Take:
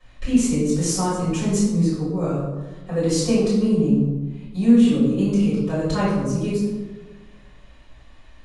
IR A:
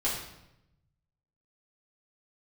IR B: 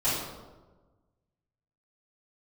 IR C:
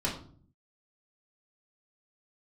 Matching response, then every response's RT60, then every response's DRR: B; 0.85 s, 1.3 s, 0.50 s; -7.5 dB, -13.5 dB, -4.5 dB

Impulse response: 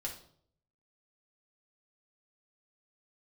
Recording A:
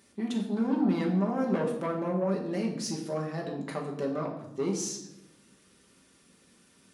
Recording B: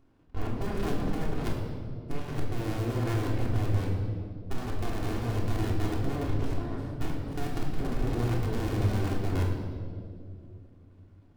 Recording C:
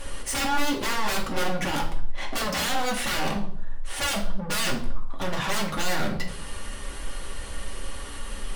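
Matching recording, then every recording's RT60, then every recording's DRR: C; 0.95 s, 2.4 s, 0.60 s; -1.0 dB, -3.5 dB, -2.0 dB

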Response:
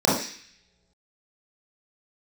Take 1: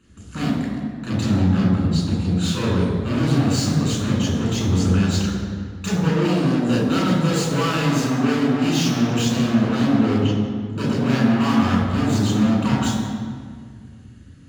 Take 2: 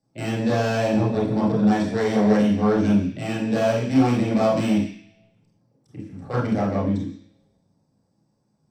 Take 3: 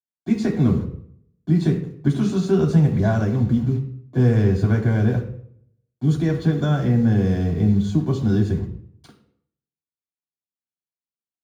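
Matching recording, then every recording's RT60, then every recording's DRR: 2; 1.9 s, no single decay rate, 0.65 s; -5.0 dB, -7.0 dB, -1.0 dB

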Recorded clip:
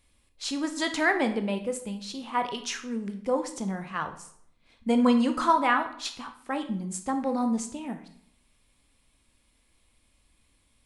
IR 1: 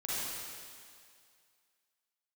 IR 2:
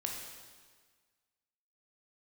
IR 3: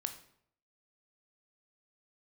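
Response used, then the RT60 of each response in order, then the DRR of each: 3; 2.2 s, 1.6 s, 0.65 s; -9.5 dB, 0.0 dB, 7.0 dB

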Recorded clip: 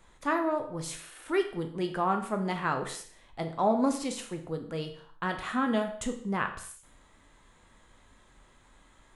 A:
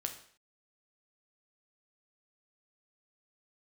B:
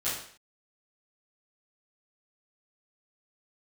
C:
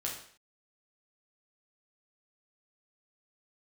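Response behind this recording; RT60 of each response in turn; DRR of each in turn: A; 0.55 s, 0.55 s, 0.55 s; 4.5 dB, -12.5 dB, -2.5 dB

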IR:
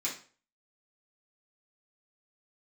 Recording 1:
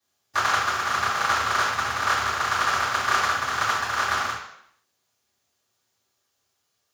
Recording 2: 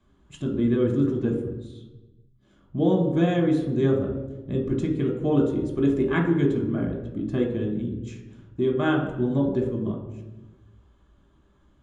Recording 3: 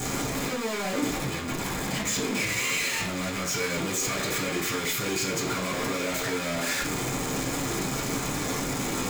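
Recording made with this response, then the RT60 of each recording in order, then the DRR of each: 3; 0.70 s, 1.2 s, 0.40 s; -15.0 dB, -2.0 dB, -8.5 dB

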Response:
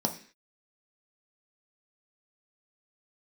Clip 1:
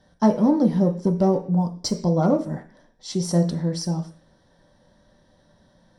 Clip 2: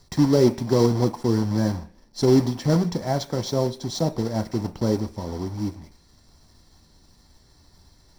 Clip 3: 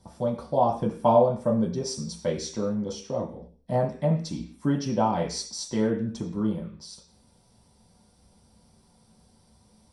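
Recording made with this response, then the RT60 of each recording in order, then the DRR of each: 1; 0.45 s, 0.45 s, 0.45 s; 3.0 dB, 9.0 dB, -2.0 dB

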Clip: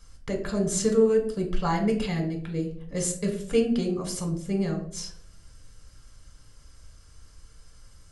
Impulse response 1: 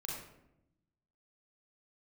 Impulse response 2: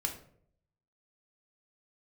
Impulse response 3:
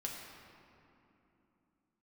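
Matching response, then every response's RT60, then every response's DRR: 2; 0.85 s, 0.60 s, 3.0 s; -3.5 dB, 2.0 dB, -2.5 dB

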